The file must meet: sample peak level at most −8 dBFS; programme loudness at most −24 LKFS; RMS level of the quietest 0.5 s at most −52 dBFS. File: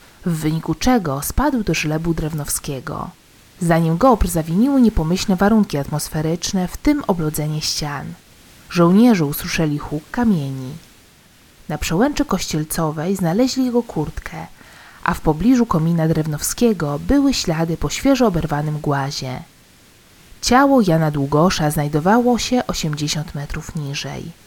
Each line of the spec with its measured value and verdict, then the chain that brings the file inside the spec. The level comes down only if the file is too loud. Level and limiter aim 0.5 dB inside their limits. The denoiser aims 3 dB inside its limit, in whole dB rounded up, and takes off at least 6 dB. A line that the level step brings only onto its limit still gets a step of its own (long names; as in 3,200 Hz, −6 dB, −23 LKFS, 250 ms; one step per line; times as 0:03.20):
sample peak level −1.5 dBFS: out of spec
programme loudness −18.5 LKFS: out of spec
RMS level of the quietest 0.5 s −49 dBFS: out of spec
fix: level −6 dB
brickwall limiter −8.5 dBFS